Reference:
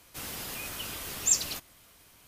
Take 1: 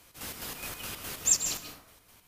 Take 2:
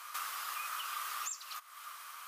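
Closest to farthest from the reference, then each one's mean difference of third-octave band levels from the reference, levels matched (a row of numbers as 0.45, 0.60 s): 1, 2; 3.0, 12.0 dB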